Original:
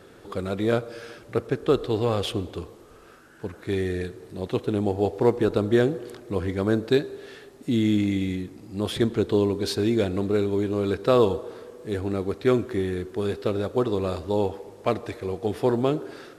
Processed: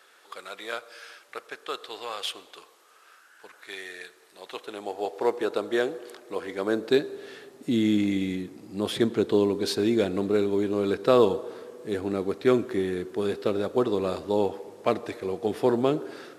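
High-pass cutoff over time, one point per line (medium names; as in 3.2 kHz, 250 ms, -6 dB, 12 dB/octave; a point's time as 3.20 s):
4.28 s 1.1 kHz
5.35 s 490 Hz
6.46 s 490 Hz
7.21 s 170 Hz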